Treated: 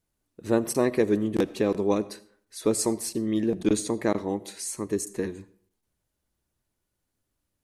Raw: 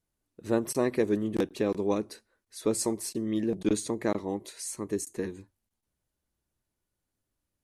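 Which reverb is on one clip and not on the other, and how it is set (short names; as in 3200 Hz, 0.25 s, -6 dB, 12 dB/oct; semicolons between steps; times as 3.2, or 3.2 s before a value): digital reverb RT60 0.56 s, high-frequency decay 0.65×, pre-delay 40 ms, DRR 18.5 dB; gain +3.5 dB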